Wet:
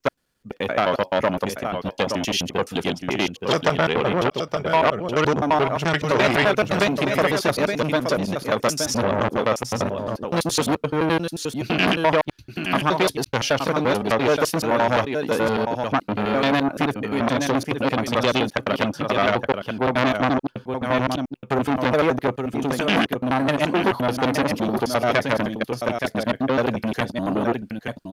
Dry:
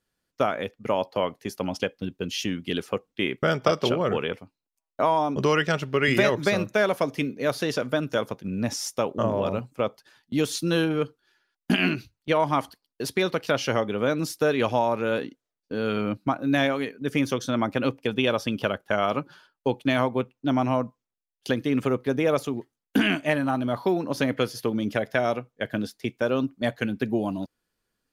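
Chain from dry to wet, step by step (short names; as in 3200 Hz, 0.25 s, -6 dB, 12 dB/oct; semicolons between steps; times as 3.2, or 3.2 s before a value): slices in reverse order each 86 ms, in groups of 5; echo 0.872 s -8.5 dB; core saturation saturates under 2400 Hz; gain +7 dB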